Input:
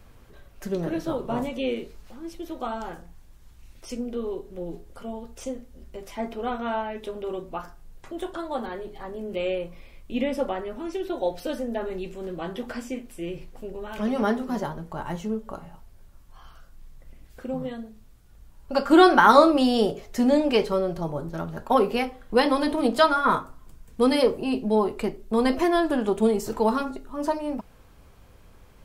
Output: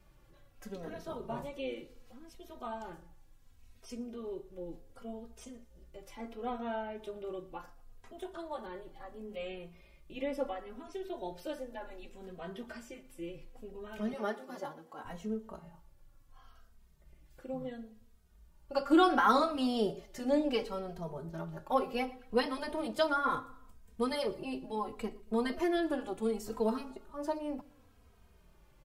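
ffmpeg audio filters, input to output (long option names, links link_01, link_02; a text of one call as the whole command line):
ffmpeg -i in.wav -filter_complex "[0:a]asettb=1/sr,asplit=3[link_01][link_02][link_03];[link_01]atrim=end=14.134[link_04];[link_02]atrim=start=14.13:end=15.05,asetpts=PTS-STARTPTS,afade=type=in:duration=0.004:curve=qsin,afade=type=out:start_time=0.916:duration=0.004:curve=qsin,highpass=270[link_05];[link_03]atrim=start=15.046[link_06];[link_04][link_05]acrossfade=duration=0.004:curve1=hsin:curve2=qsin[link_07];[link_07][link_06]acrossfade=duration=0.004:curve1=qsin:curve2=hsin,aecho=1:1:118|236|354:0.0794|0.0334|0.014,asplit=2[link_08][link_09];[link_09]adelay=2.9,afreqshift=-0.7[link_10];[link_08][link_10]amix=inputs=2:normalize=1,volume=-7.5dB" out.wav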